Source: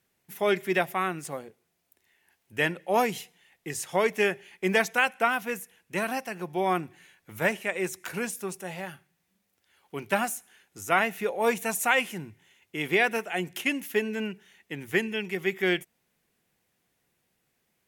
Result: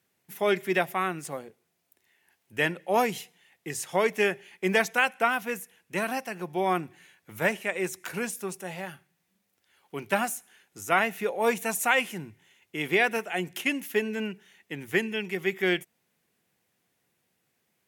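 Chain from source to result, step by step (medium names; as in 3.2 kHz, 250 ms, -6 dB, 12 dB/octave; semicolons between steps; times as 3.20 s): high-pass 87 Hz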